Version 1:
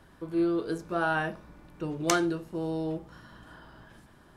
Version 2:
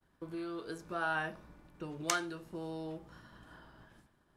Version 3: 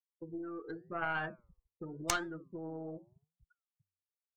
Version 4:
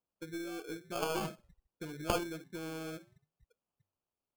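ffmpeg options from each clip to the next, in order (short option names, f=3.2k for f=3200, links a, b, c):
-filter_complex "[0:a]agate=range=-33dB:threshold=-48dB:ratio=3:detection=peak,acrossover=split=800|2300[a][b][c];[a]acompressor=threshold=-36dB:ratio=6[d];[d][b][c]amix=inputs=3:normalize=0,volume=-4.5dB"
-af "afftfilt=real='re*gte(hypot(re,im),0.0141)':imag='im*gte(hypot(re,im),0.0141)':win_size=1024:overlap=0.75,flanger=delay=5.3:depth=5.8:regen=87:speed=0.88:shape=triangular,aeval=exprs='0.211*(cos(1*acos(clip(val(0)/0.211,-1,1)))-cos(1*PI/2))+0.0596*(cos(4*acos(clip(val(0)/0.211,-1,1)))-cos(4*PI/2))':c=same,volume=3.5dB"
-af "acrusher=samples=23:mix=1:aa=0.000001,volume=1dB"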